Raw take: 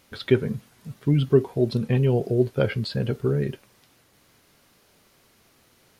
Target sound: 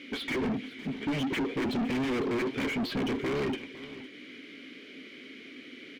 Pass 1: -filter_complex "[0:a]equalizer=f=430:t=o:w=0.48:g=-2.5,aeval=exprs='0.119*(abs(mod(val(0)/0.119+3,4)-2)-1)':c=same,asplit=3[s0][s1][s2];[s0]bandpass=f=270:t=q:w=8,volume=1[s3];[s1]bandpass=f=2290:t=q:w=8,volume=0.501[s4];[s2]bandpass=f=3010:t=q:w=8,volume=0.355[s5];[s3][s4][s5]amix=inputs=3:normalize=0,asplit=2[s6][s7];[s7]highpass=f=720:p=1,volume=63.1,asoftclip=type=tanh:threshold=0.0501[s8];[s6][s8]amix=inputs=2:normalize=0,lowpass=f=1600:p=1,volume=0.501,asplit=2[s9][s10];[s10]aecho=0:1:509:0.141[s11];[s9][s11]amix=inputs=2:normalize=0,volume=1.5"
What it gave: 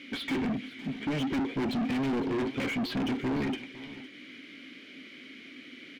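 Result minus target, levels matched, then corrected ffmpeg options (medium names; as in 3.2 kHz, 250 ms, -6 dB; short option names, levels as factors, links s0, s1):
500 Hz band -3.0 dB
-filter_complex "[0:a]equalizer=f=430:t=o:w=0.48:g=6,aeval=exprs='0.119*(abs(mod(val(0)/0.119+3,4)-2)-1)':c=same,asplit=3[s0][s1][s2];[s0]bandpass=f=270:t=q:w=8,volume=1[s3];[s1]bandpass=f=2290:t=q:w=8,volume=0.501[s4];[s2]bandpass=f=3010:t=q:w=8,volume=0.355[s5];[s3][s4][s5]amix=inputs=3:normalize=0,asplit=2[s6][s7];[s7]highpass=f=720:p=1,volume=63.1,asoftclip=type=tanh:threshold=0.0501[s8];[s6][s8]amix=inputs=2:normalize=0,lowpass=f=1600:p=1,volume=0.501,asplit=2[s9][s10];[s10]aecho=0:1:509:0.141[s11];[s9][s11]amix=inputs=2:normalize=0,volume=1.5"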